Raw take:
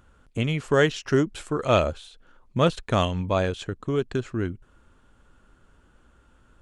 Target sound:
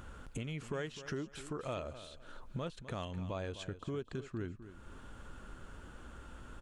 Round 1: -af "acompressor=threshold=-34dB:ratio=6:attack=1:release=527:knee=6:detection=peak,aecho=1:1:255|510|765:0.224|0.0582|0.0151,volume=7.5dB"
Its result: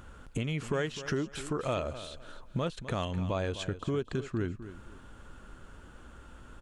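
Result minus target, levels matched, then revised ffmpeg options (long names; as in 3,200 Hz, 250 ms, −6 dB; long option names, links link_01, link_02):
downward compressor: peak gain reduction −8 dB
-af "acompressor=threshold=-43.5dB:ratio=6:attack=1:release=527:knee=6:detection=peak,aecho=1:1:255|510|765:0.224|0.0582|0.0151,volume=7.5dB"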